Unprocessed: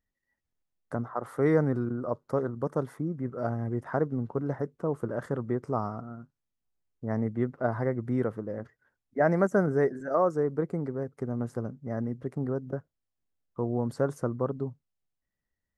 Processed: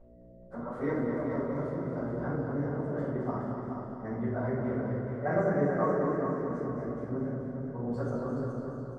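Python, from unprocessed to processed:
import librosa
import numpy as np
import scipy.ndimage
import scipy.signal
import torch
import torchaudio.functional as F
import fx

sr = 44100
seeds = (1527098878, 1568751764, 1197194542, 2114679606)

p1 = scipy.signal.sosfilt(scipy.signal.butter(2, 5600.0, 'lowpass', fs=sr, output='sos'), x)
p2 = fx.comb_fb(p1, sr, f0_hz=83.0, decay_s=1.9, harmonics='all', damping=0.0, mix_pct=50)
p3 = fx.dmg_buzz(p2, sr, base_hz=60.0, harmonics=11, level_db=-57.0, tilt_db=-3, odd_only=False)
p4 = fx.stretch_vocoder_free(p3, sr, factor=0.57)
p5 = p4 + fx.echo_heads(p4, sr, ms=211, heads='first and second', feedback_pct=48, wet_db=-8, dry=0)
p6 = fx.room_shoebox(p5, sr, seeds[0], volume_m3=170.0, walls='mixed', distance_m=4.8)
p7 = fx.echo_warbled(p6, sr, ms=246, feedback_pct=51, rate_hz=2.8, cents=81, wet_db=-9.0)
y = p7 * librosa.db_to_amplitude(-9.0)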